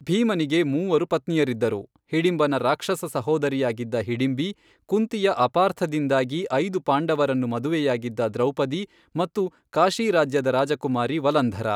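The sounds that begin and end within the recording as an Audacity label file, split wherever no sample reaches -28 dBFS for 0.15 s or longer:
2.130000	4.510000	sound
4.920000	8.840000	sound
9.160000	9.470000	sound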